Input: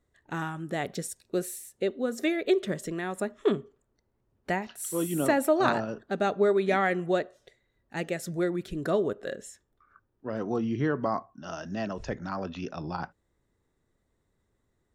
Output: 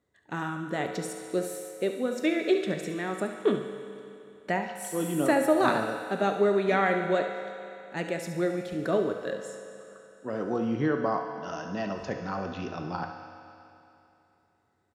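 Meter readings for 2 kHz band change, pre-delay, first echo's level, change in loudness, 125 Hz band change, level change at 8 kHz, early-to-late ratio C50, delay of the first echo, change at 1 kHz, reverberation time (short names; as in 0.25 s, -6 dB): +1.5 dB, 4 ms, -11.5 dB, +0.5 dB, -0.5 dB, -2.5 dB, 5.0 dB, 70 ms, +1.5 dB, 2.9 s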